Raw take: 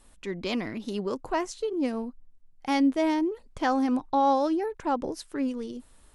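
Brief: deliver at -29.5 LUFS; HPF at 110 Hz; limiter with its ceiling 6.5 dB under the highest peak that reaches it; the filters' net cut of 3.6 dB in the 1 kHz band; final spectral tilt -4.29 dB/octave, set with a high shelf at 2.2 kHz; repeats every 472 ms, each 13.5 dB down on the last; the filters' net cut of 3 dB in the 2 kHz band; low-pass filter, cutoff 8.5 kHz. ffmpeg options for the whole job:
-af "highpass=110,lowpass=8500,equalizer=f=1000:t=o:g=-4.5,equalizer=f=2000:t=o:g=-4,highshelf=f=2200:g=3,alimiter=limit=0.0794:level=0:latency=1,aecho=1:1:472|944:0.211|0.0444,volume=1.26"

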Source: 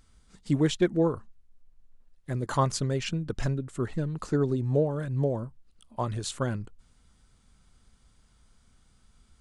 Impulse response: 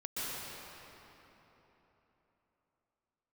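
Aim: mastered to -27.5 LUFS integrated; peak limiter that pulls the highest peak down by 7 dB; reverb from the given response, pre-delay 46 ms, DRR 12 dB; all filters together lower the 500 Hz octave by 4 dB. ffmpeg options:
-filter_complex "[0:a]equalizer=f=500:t=o:g=-5,alimiter=limit=0.0891:level=0:latency=1,asplit=2[s0][s1];[1:a]atrim=start_sample=2205,adelay=46[s2];[s1][s2]afir=irnorm=-1:irlink=0,volume=0.15[s3];[s0][s3]amix=inputs=2:normalize=0,volume=1.78"

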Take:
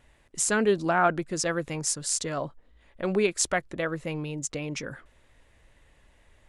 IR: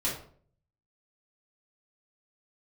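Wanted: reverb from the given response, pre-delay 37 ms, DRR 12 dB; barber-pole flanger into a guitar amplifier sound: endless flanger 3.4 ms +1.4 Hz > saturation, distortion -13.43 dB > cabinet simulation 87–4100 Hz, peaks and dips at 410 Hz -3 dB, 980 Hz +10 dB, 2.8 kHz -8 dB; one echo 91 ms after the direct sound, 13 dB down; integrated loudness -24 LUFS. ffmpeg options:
-filter_complex "[0:a]aecho=1:1:91:0.224,asplit=2[s0][s1];[1:a]atrim=start_sample=2205,adelay=37[s2];[s1][s2]afir=irnorm=-1:irlink=0,volume=0.119[s3];[s0][s3]amix=inputs=2:normalize=0,asplit=2[s4][s5];[s5]adelay=3.4,afreqshift=1.4[s6];[s4][s6]amix=inputs=2:normalize=1,asoftclip=threshold=0.0841,highpass=87,equalizer=f=410:t=q:w=4:g=-3,equalizer=f=980:t=q:w=4:g=10,equalizer=f=2800:t=q:w=4:g=-8,lowpass=f=4100:w=0.5412,lowpass=f=4100:w=1.3066,volume=2.82"

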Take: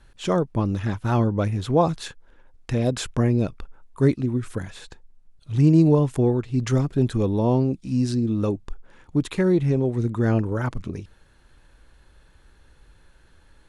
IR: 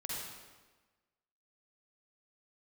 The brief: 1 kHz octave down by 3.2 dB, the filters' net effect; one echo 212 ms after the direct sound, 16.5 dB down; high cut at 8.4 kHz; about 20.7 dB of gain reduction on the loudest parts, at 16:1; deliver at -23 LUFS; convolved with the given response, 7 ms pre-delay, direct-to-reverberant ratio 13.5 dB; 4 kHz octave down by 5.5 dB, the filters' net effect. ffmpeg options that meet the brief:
-filter_complex "[0:a]lowpass=8400,equalizer=f=1000:t=o:g=-4,equalizer=f=4000:t=o:g=-6.5,acompressor=threshold=0.0224:ratio=16,aecho=1:1:212:0.15,asplit=2[s0][s1];[1:a]atrim=start_sample=2205,adelay=7[s2];[s1][s2]afir=irnorm=-1:irlink=0,volume=0.178[s3];[s0][s3]amix=inputs=2:normalize=0,volume=5.96"

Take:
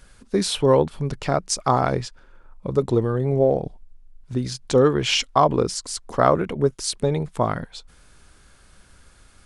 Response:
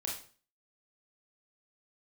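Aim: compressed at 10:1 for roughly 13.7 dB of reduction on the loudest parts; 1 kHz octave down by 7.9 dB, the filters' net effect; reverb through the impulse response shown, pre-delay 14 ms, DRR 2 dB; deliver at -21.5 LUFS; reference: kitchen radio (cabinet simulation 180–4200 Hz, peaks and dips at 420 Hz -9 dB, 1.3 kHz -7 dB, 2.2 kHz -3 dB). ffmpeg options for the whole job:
-filter_complex "[0:a]equalizer=f=1000:t=o:g=-8.5,acompressor=threshold=0.0398:ratio=10,asplit=2[s0][s1];[1:a]atrim=start_sample=2205,adelay=14[s2];[s1][s2]afir=irnorm=-1:irlink=0,volume=0.668[s3];[s0][s3]amix=inputs=2:normalize=0,highpass=180,equalizer=f=420:t=q:w=4:g=-9,equalizer=f=1300:t=q:w=4:g=-7,equalizer=f=2200:t=q:w=4:g=-3,lowpass=f=4200:w=0.5412,lowpass=f=4200:w=1.3066,volume=5.31"

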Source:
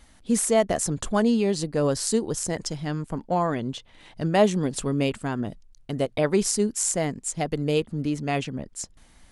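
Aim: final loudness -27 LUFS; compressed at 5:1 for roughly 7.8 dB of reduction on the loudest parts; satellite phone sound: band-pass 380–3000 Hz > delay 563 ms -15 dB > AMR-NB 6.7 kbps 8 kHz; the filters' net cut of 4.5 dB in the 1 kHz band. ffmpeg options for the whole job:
-af "equalizer=f=1000:t=o:g=-6.5,acompressor=threshold=0.0562:ratio=5,highpass=380,lowpass=3000,aecho=1:1:563:0.178,volume=3.16" -ar 8000 -c:a libopencore_amrnb -b:a 6700

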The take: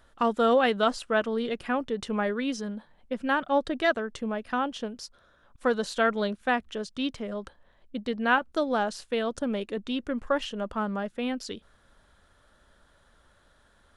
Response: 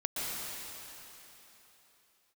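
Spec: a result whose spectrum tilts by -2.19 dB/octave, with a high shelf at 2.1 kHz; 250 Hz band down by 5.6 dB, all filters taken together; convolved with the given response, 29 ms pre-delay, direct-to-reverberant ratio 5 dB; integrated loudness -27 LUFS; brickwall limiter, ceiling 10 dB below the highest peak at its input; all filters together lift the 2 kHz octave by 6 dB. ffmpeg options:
-filter_complex "[0:a]equalizer=f=250:t=o:g=-6.5,equalizer=f=2000:t=o:g=3.5,highshelf=f=2100:g=9,alimiter=limit=0.188:level=0:latency=1,asplit=2[s0][s1];[1:a]atrim=start_sample=2205,adelay=29[s2];[s1][s2]afir=irnorm=-1:irlink=0,volume=0.282[s3];[s0][s3]amix=inputs=2:normalize=0,volume=1.12"

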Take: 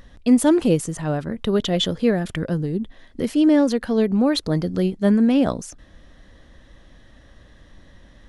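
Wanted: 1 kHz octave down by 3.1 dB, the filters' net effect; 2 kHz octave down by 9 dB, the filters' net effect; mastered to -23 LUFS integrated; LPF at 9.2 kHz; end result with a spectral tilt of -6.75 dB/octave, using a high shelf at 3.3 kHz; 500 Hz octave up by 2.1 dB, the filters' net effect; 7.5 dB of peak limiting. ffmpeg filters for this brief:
-af "lowpass=9200,equalizer=f=500:t=o:g=4,equalizer=f=1000:t=o:g=-4,equalizer=f=2000:t=o:g=-8,highshelf=f=3300:g=-8.5,volume=0.944,alimiter=limit=0.211:level=0:latency=1"

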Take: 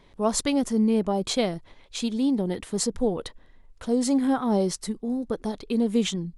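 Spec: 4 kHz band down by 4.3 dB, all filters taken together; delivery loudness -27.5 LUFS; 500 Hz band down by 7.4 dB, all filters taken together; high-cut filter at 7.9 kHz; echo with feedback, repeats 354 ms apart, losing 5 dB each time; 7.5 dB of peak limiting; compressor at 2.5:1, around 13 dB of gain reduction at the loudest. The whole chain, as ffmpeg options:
-af "lowpass=7900,equalizer=f=500:t=o:g=-9,equalizer=f=4000:t=o:g=-5,acompressor=threshold=0.00794:ratio=2.5,alimiter=level_in=3.16:limit=0.0631:level=0:latency=1,volume=0.316,aecho=1:1:354|708|1062|1416|1770|2124|2478:0.562|0.315|0.176|0.0988|0.0553|0.031|0.0173,volume=4.73"

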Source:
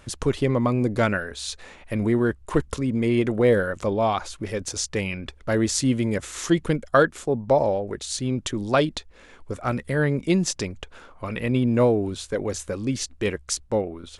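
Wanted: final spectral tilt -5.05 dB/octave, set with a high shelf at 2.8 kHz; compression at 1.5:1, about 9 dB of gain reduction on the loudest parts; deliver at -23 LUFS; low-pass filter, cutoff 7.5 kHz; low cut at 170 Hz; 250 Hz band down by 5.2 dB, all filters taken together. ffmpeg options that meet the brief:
-af "highpass=170,lowpass=7500,equalizer=f=250:t=o:g=-5.5,highshelf=f=2800:g=-8,acompressor=threshold=0.00891:ratio=1.5,volume=3.98"

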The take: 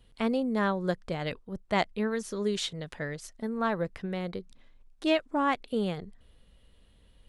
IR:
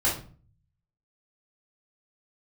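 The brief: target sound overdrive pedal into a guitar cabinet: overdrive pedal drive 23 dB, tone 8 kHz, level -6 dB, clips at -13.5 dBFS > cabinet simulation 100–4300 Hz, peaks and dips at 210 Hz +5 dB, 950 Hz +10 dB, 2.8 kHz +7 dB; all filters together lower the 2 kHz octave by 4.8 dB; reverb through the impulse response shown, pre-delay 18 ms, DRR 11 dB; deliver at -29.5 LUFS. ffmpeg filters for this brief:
-filter_complex "[0:a]equalizer=f=2000:t=o:g=-8.5,asplit=2[s0][s1];[1:a]atrim=start_sample=2205,adelay=18[s2];[s1][s2]afir=irnorm=-1:irlink=0,volume=0.0794[s3];[s0][s3]amix=inputs=2:normalize=0,asplit=2[s4][s5];[s5]highpass=f=720:p=1,volume=14.1,asoftclip=type=tanh:threshold=0.211[s6];[s4][s6]amix=inputs=2:normalize=0,lowpass=f=8000:p=1,volume=0.501,highpass=100,equalizer=f=210:t=q:w=4:g=5,equalizer=f=950:t=q:w=4:g=10,equalizer=f=2800:t=q:w=4:g=7,lowpass=f=4300:w=0.5412,lowpass=f=4300:w=1.3066,volume=0.422"

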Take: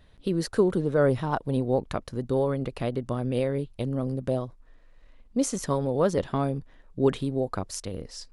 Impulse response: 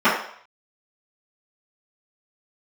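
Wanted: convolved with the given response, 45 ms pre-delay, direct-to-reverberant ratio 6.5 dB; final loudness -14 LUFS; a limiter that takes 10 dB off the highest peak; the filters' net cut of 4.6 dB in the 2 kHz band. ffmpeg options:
-filter_complex "[0:a]equalizer=f=2000:t=o:g=-7,alimiter=limit=0.1:level=0:latency=1,asplit=2[s0][s1];[1:a]atrim=start_sample=2205,adelay=45[s2];[s1][s2]afir=irnorm=-1:irlink=0,volume=0.0316[s3];[s0][s3]amix=inputs=2:normalize=0,volume=6.68"

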